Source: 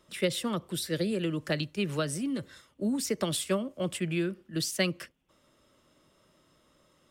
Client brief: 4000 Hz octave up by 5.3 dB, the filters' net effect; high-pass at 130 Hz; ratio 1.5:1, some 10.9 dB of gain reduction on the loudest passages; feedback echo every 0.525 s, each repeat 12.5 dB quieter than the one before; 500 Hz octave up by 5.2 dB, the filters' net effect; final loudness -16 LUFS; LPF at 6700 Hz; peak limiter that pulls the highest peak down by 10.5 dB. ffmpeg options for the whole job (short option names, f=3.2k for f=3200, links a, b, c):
-af "highpass=130,lowpass=6.7k,equalizer=f=500:t=o:g=6.5,equalizer=f=4k:t=o:g=7,acompressor=threshold=-51dB:ratio=1.5,alimiter=level_in=7dB:limit=-24dB:level=0:latency=1,volume=-7dB,aecho=1:1:525|1050|1575:0.237|0.0569|0.0137,volume=25dB"